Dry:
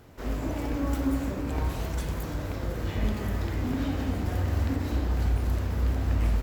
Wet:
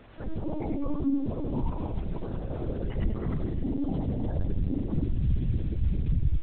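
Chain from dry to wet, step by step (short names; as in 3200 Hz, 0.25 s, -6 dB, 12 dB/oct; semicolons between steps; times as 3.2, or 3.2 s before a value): de-hum 129 Hz, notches 27; spectral gate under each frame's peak -20 dB strong; bit-crush 9-bit; thinning echo 97 ms, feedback 55%, high-pass 790 Hz, level -3 dB; LPC vocoder at 8 kHz pitch kept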